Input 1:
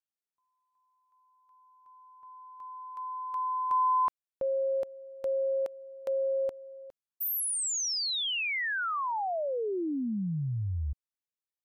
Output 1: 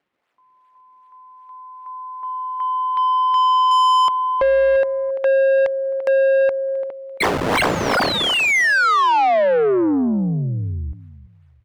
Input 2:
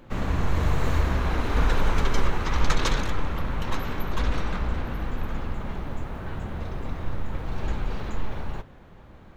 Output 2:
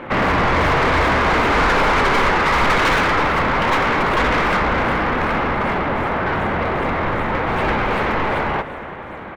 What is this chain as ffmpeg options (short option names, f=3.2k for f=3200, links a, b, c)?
-filter_complex "[0:a]acrossover=split=3300[a][b];[a]equalizer=f=2.1k:w=6.6:g=5[c];[b]acrusher=samples=35:mix=1:aa=0.000001:lfo=1:lforange=56:lforate=2.6[d];[c][d]amix=inputs=2:normalize=0,aecho=1:1:341|682|1023:0.141|0.0438|0.0136,asplit=2[e][f];[f]highpass=f=720:p=1,volume=31dB,asoftclip=type=tanh:threshold=-7.5dB[g];[e][g]amix=inputs=2:normalize=0,lowpass=f=2.7k:p=1,volume=-6dB"